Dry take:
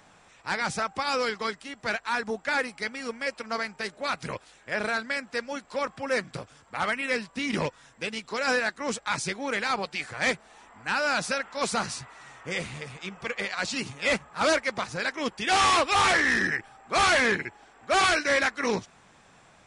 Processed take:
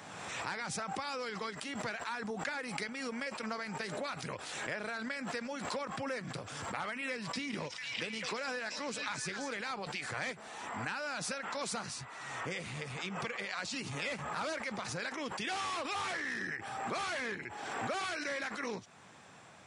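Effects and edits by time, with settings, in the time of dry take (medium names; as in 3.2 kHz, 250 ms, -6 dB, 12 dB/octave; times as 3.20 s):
7.11–9.54 s: repeats whose band climbs or falls 223 ms, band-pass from 5.5 kHz, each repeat -0.7 oct, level -5 dB
whole clip: compression 6:1, threshold -37 dBFS; high-pass 83 Hz 24 dB/octave; swell ahead of each attack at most 30 dB/s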